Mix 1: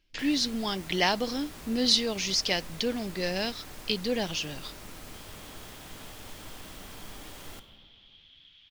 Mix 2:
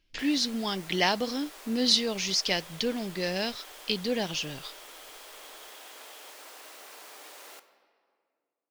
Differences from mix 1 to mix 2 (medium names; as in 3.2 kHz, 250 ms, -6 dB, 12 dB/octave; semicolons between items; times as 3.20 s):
first sound: add high-pass 420 Hz 24 dB/octave; second sound: entry -2.70 s